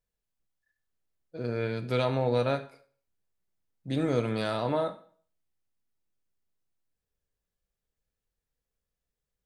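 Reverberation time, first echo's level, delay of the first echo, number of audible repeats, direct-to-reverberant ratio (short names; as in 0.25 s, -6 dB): 0.50 s, none, none, none, 9.0 dB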